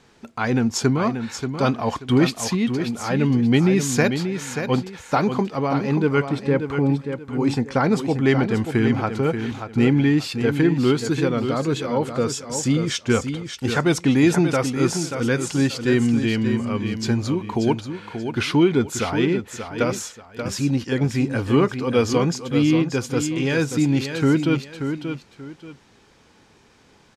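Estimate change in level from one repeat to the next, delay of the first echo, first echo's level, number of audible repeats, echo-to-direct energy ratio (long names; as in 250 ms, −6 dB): −11.5 dB, 583 ms, −8.0 dB, 2, −7.5 dB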